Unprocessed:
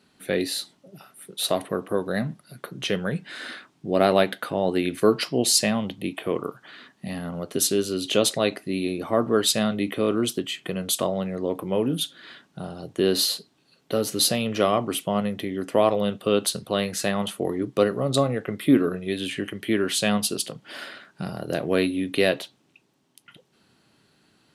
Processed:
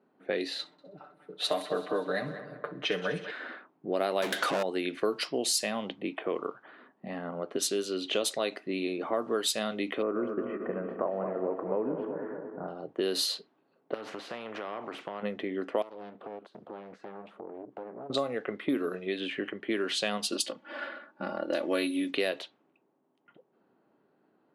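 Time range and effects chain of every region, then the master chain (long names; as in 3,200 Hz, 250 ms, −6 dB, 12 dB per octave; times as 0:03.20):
0:00.59–0:03.31: comb filter 6.7 ms, depth 89% + echo machine with several playback heads 64 ms, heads first and third, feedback 62%, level −17.5 dB
0:04.22–0:04.63: power curve on the samples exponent 0.5 + hard clipping −16 dBFS
0:10.02–0:12.68: feedback delay that plays each chunk backwards 113 ms, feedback 79%, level −9 dB + inverse Chebyshev low-pass filter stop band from 3,400 Hz
0:13.94–0:15.23: downward compressor 16 to 1, threshold −27 dBFS + every bin compressed towards the loudest bin 2 to 1
0:15.82–0:18.10: downward compressor, threshold −36 dBFS + highs frequency-modulated by the lows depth 0.7 ms
0:20.32–0:22.11: high-shelf EQ 4,100 Hz +3.5 dB + comb filter 3.5 ms, depth 92%
whole clip: low-pass that shuts in the quiet parts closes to 820 Hz, open at −16.5 dBFS; high-pass filter 320 Hz 12 dB per octave; downward compressor 3 to 1, threshold −28 dBFS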